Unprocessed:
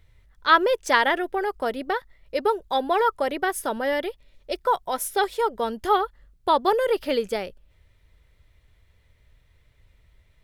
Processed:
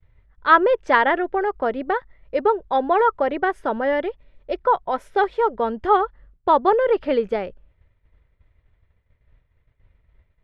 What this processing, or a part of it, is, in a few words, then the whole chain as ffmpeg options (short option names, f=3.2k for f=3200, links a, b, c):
hearing-loss simulation: -af "lowpass=1.9k,agate=range=-33dB:threshold=-51dB:ratio=3:detection=peak,volume=4dB"